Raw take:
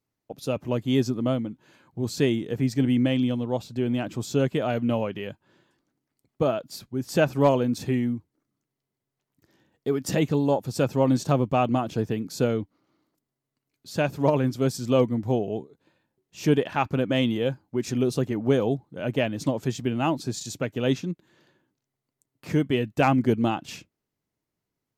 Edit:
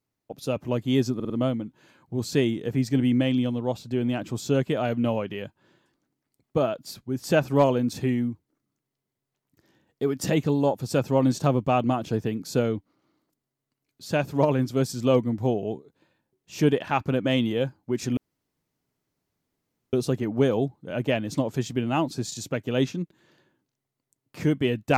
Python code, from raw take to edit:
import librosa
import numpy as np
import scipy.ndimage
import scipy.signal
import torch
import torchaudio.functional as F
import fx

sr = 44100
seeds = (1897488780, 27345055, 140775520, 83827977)

y = fx.edit(x, sr, fx.stutter(start_s=1.15, slice_s=0.05, count=4),
    fx.insert_room_tone(at_s=18.02, length_s=1.76), tone=tone)